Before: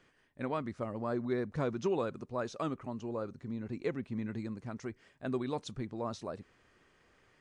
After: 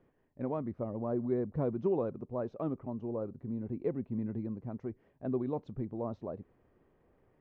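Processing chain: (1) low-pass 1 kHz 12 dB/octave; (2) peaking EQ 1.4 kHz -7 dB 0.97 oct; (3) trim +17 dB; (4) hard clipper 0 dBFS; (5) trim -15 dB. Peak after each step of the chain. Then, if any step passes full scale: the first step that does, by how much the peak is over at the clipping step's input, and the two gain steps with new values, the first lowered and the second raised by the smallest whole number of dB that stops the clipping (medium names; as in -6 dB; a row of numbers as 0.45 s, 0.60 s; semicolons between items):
-21.5 dBFS, -22.0 dBFS, -5.0 dBFS, -5.0 dBFS, -20.0 dBFS; nothing clips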